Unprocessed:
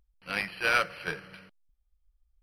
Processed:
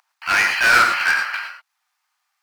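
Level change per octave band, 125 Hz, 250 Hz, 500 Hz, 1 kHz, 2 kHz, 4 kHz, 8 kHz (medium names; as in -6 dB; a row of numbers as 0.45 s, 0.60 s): no reading, +5.0 dB, +3.5 dB, +14.5 dB, +15.0 dB, +13.0 dB, +18.0 dB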